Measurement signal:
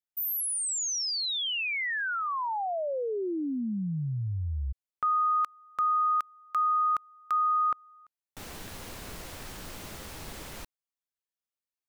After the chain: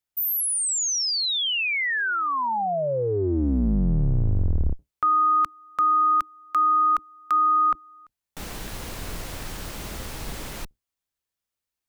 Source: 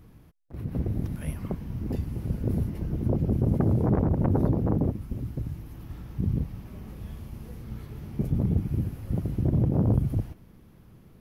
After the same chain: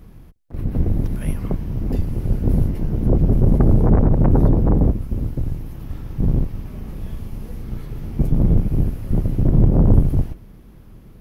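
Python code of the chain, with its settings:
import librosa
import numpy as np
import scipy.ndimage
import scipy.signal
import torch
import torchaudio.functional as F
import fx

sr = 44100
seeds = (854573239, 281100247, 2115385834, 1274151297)

y = fx.octave_divider(x, sr, octaves=2, level_db=3.0)
y = F.gain(torch.from_numpy(y), 6.0).numpy()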